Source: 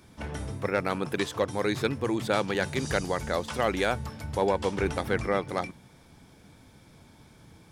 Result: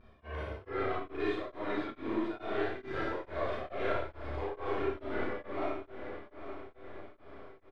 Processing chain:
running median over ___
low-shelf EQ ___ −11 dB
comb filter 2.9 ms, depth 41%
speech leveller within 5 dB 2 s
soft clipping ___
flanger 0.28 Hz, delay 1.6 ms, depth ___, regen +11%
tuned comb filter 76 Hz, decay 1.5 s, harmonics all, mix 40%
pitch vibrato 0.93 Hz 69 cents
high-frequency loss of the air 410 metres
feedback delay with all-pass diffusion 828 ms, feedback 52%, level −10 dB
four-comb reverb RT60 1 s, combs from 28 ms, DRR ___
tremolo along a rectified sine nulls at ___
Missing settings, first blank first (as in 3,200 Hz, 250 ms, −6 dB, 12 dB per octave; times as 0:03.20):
3 samples, 190 Hz, −23.5 dBFS, 1.9 ms, −7.5 dB, 2.3 Hz